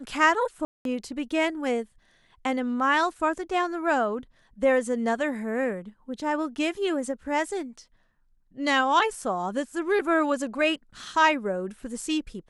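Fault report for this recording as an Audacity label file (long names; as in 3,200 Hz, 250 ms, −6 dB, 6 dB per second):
0.650000	0.850000	drop-out 202 ms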